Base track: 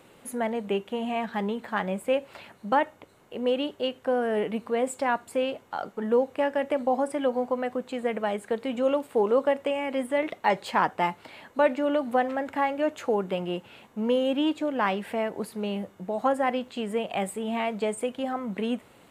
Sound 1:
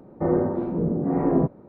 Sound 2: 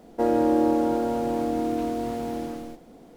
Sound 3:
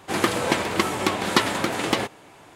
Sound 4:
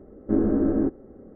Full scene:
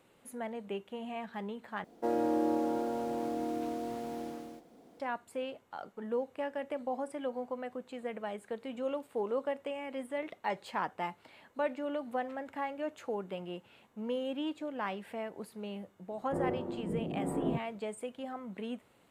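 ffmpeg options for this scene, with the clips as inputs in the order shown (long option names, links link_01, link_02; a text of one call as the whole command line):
ffmpeg -i bed.wav -i cue0.wav -i cue1.wav -filter_complex "[0:a]volume=-11dB[link_01];[2:a]highpass=frequency=190:poles=1[link_02];[link_01]asplit=2[link_03][link_04];[link_03]atrim=end=1.844[link_05];[link_02]atrim=end=3.16,asetpts=PTS-STARTPTS,volume=-8dB[link_06];[link_04]atrim=start=4.996[link_07];[1:a]atrim=end=1.68,asetpts=PTS-STARTPTS,volume=-12.5dB,afade=type=in:duration=0.004:curve=hsin,afade=type=out:start_time=1.676:duration=0.004:curve=hsin,adelay=16110[link_08];[link_05][link_06]acrossfade=duration=0.004:curve1=hsin:curve2=hsin[link_09];[link_09][link_07]acrossfade=duration=0.004:curve1=hsin:curve2=hsin[link_10];[link_10][link_08]amix=inputs=2:normalize=0" out.wav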